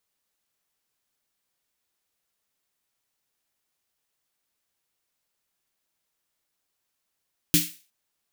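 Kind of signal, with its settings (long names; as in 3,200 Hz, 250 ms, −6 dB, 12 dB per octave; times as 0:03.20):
synth snare length 0.36 s, tones 170 Hz, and 300 Hz, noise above 2,100 Hz, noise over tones 2 dB, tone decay 0.24 s, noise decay 0.37 s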